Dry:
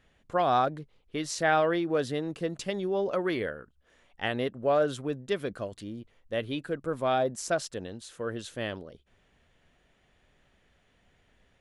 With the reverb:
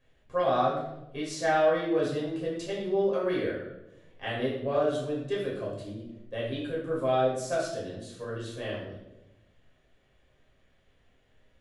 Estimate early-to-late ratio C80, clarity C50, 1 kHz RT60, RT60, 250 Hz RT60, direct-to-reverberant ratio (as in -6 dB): 6.0 dB, 2.5 dB, 0.80 s, 0.95 s, 1.3 s, -5.5 dB